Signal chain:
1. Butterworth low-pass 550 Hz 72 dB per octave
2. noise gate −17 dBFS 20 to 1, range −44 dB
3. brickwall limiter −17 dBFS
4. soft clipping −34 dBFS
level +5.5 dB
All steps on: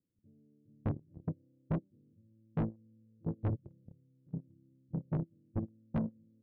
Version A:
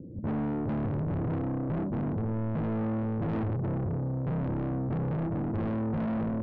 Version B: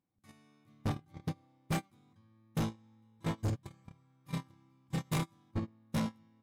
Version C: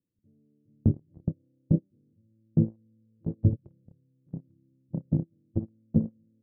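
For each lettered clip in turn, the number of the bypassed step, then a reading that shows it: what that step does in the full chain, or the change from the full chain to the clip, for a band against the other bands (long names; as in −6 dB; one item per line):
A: 2, change in momentary loudness spread −7 LU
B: 1, 2 kHz band +12.0 dB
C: 4, distortion level −4 dB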